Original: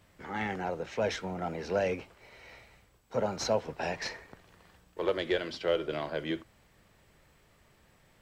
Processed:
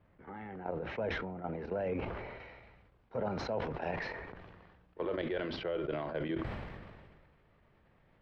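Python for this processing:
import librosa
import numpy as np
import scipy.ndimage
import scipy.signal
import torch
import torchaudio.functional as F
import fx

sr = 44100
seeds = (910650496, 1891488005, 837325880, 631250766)

y = fx.high_shelf(x, sr, hz=2900.0, db=fx.steps((0.0, -12.0), (2.38, -3.5)))
y = fx.level_steps(y, sr, step_db=11)
y = fx.air_absorb(y, sr, metres=340.0)
y = fx.sustainer(y, sr, db_per_s=32.0)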